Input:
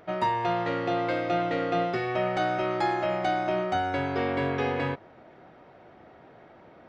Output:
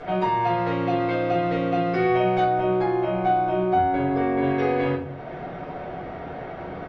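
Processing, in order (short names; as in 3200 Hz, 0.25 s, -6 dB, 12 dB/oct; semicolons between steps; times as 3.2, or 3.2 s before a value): 2.43–4.43 high shelf 2400 Hz -11.5 dB; compressor 2.5:1, threshold -46 dBFS, peak gain reduction 15.5 dB; air absorption 88 m; speakerphone echo 0.19 s, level -20 dB; shoebox room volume 260 m³, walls furnished, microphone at 5.4 m; gain +7.5 dB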